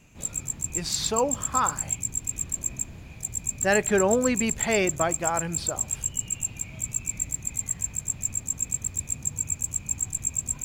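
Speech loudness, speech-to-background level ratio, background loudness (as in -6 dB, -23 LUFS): -26.5 LUFS, 1.5 dB, -28.0 LUFS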